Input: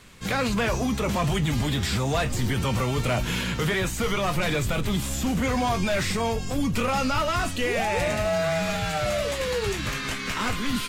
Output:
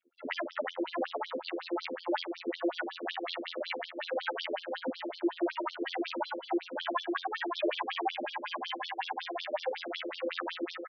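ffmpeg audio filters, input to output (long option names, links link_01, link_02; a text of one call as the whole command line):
ffmpeg -i in.wav -filter_complex "[0:a]aemphasis=mode=reproduction:type=50fm,afftdn=noise_reduction=28:noise_floor=-44,acrossover=split=4000[link_01][link_02];[link_02]acompressor=threshold=-60dB:ratio=4:attack=1:release=60[link_03];[link_01][link_03]amix=inputs=2:normalize=0,asplit=2[link_04][link_05];[link_05]asoftclip=type=tanh:threshold=-25dB,volume=-5.5dB[link_06];[link_04][link_06]amix=inputs=2:normalize=0,asetrate=55563,aresample=44100,atempo=0.793701,afftfilt=real='hypot(re,im)*cos(PI*b)':imag='0':win_size=2048:overlap=0.75,asplit=2[link_07][link_08];[link_08]adelay=586,lowpass=frequency=2200:poles=1,volume=-5dB,asplit=2[link_09][link_10];[link_10]adelay=586,lowpass=frequency=2200:poles=1,volume=0.22,asplit=2[link_11][link_12];[link_12]adelay=586,lowpass=frequency=2200:poles=1,volume=0.22[link_13];[link_07][link_09][link_11][link_13]amix=inputs=4:normalize=0,afftfilt=real='re*between(b*sr/1024,360*pow(4500/360,0.5+0.5*sin(2*PI*5.4*pts/sr))/1.41,360*pow(4500/360,0.5+0.5*sin(2*PI*5.4*pts/sr))*1.41)':imag='im*between(b*sr/1024,360*pow(4500/360,0.5+0.5*sin(2*PI*5.4*pts/sr))/1.41,360*pow(4500/360,0.5+0.5*sin(2*PI*5.4*pts/sr))*1.41)':win_size=1024:overlap=0.75" out.wav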